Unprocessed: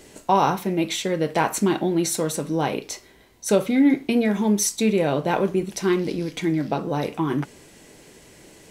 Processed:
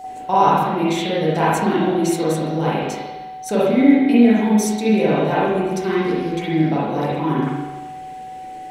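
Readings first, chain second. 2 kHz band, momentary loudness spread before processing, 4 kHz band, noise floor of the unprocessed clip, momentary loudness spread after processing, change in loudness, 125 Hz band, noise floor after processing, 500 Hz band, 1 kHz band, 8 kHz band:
+4.0 dB, 7 LU, +1.0 dB, -51 dBFS, 18 LU, +4.5 dB, +4.5 dB, -33 dBFS, +4.0 dB, +6.0 dB, -4.5 dB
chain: whine 750 Hz -29 dBFS; spring tank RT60 1.2 s, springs 38/42/51 ms, chirp 35 ms, DRR -8 dB; gain -4.5 dB

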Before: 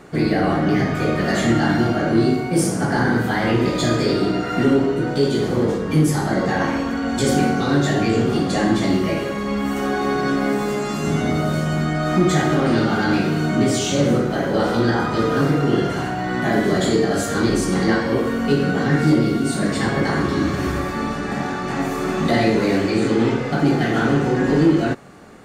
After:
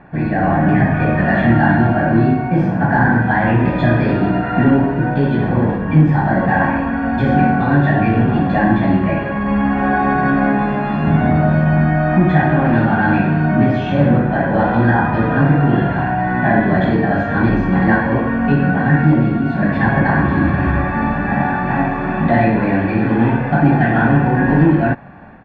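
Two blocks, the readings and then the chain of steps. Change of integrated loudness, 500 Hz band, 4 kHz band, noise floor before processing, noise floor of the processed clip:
+4.5 dB, +0.5 dB, n/a, -25 dBFS, -20 dBFS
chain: LPF 2300 Hz 24 dB/oct; comb 1.2 ms, depth 64%; AGC gain up to 7 dB

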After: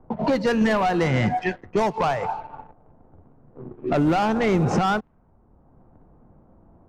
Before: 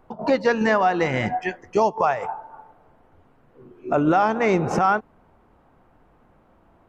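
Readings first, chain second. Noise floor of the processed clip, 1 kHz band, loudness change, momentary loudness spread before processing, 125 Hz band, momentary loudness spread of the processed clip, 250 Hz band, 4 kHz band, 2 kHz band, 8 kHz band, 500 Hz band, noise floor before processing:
-57 dBFS, -2.5 dB, -1.0 dB, 9 LU, +5.0 dB, 10 LU, +2.0 dB, +3.0 dB, -2.5 dB, n/a, -2.0 dB, -58 dBFS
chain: sample leveller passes 2; low-pass opened by the level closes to 850 Hz, open at -11.5 dBFS; tone controls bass +8 dB, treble +3 dB; three-band squash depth 40%; gain -7 dB

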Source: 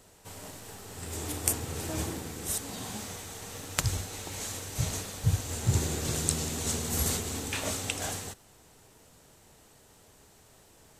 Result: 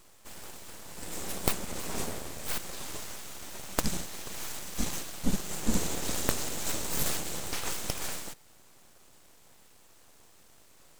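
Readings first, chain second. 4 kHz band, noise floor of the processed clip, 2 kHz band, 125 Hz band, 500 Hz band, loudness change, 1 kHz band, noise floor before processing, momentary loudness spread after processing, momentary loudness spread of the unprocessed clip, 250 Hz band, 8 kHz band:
-0.5 dB, -57 dBFS, -0.5 dB, -9.5 dB, -1.0 dB, -2.5 dB, +0.5 dB, -59 dBFS, 14 LU, 14 LU, +0.5 dB, -3.0 dB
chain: full-wave rectifier; gain +1.5 dB

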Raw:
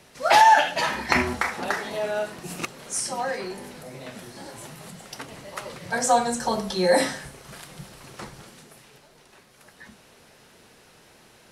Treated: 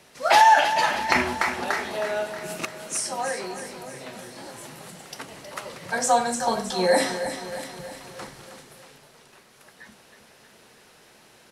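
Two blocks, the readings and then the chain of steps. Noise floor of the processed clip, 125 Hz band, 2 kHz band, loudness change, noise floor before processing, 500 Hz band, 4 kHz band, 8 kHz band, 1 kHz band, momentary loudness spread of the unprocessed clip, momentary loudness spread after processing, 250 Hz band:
-54 dBFS, -3.5 dB, +0.5 dB, 0.0 dB, -55 dBFS, 0.0 dB, +0.5 dB, +0.5 dB, +0.5 dB, 22 LU, 21 LU, -1.5 dB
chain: low shelf 170 Hz -7 dB; on a send: feedback echo 0.316 s, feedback 56%, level -10 dB

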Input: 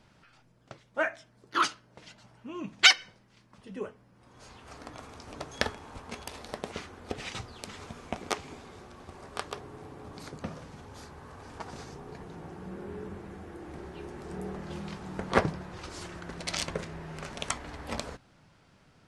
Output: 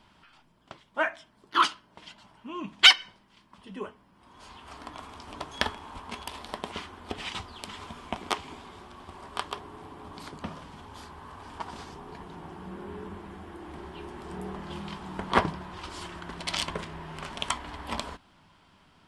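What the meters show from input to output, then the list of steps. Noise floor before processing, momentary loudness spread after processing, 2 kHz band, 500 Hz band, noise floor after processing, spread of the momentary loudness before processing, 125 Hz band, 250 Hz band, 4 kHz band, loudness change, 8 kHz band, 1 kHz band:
-62 dBFS, 19 LU, +1.5 dB, -1.0 dB, -62 dBFS, 19 LU, -1.0 dB, +0.5 dB, +4.5 dB, +3.0 dB, -2.5 dB, +4.0 dB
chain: thirty-one-band EQ 125 Hz -11 dB, 500 Hz -7 dB, 1000 Hz +8 dB, 3150 Hz +7 dB, 6300 Hz -5 dB; in parallel at -7 dB: soft clip -10 dBFS, distortion -12 dB; on the sum: gain -2 dB

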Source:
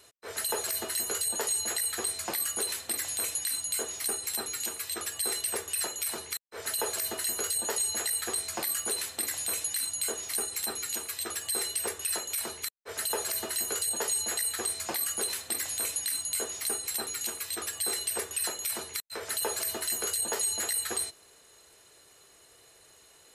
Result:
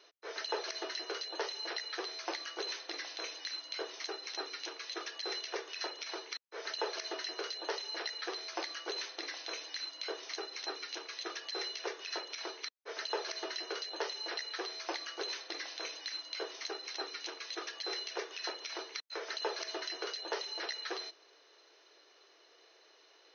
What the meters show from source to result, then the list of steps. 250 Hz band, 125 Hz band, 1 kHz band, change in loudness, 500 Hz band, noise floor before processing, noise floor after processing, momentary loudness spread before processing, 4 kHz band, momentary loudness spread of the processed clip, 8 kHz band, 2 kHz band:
-4.0 dB, under -40 dB, -2.5 dB, -9.5 dB, -2.5 dB, -58 dBFS, -64 dBFS, 5 LU, -2.5 dB, 4 LU, -21.0 dB, -2.5 dB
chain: brick-wall FIR band-pass 280–6500 Hz; gain -2.5 dB

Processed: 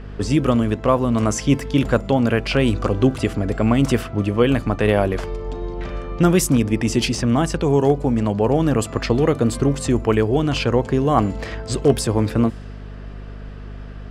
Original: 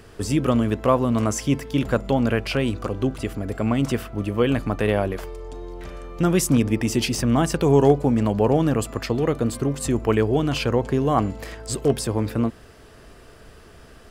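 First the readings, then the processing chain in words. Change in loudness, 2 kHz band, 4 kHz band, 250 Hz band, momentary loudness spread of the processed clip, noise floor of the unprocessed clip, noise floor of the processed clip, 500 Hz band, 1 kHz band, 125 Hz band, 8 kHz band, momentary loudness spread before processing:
+3.0 dB, +3.5 dB, +3.0 dB, +3.0 dB, 12 LU, -47 dBFS, -34 dBFS, +2.5 dB, +2.5 dB, +3.5 dB, +2.0 dB, 10 LU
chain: vocal rider within 4 dB 0.5 s; hum 50 Hz, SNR 15 dB; low-pass opened by the level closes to 2700 Hz, open at -15 dBFS; gain +3 dB

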